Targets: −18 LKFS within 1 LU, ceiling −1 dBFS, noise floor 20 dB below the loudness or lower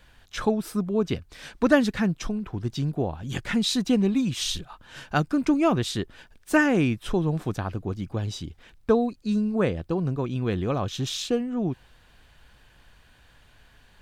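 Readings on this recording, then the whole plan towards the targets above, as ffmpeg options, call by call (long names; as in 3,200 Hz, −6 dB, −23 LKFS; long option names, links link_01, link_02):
integrated loudness −26.0 LKFS; sample peak −5.0 dBFS; target loudness −18.0 LKFS
→ -af "volume=8dB,alimiter=limit=-1dB:level=0:latency=1"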